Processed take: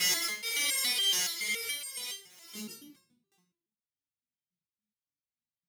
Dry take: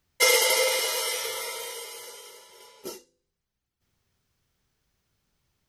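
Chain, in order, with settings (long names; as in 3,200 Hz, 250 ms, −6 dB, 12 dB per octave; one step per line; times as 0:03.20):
slices reordered back to front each 85 ms, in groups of 5
Chebyshev band-stop filter 210–2,300 Hz, order 2
low-shelf EQ 390 Hz +10.5 dB
leveller curve on the samples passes 5
high-pass filter 120 Hz 12 dB per octave
high-shelf EQ 10,000 Hz −3 dB
rectangular room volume 110 cubic metres, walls mixed, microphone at 0.67 metres
step-sequenced resonator 7.1 Hz 180–540 Hz
level −3 dB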